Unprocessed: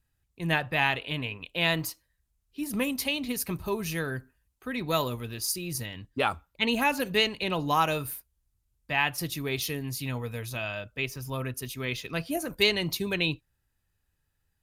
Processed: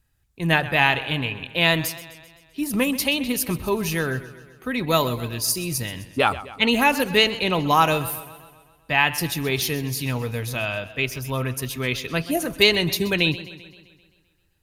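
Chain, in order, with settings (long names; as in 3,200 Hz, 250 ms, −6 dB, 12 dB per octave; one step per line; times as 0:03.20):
feedback echo with a swinging delay time 130 ms, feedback 58%, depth 75 cents, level −16 dB
level +7 dB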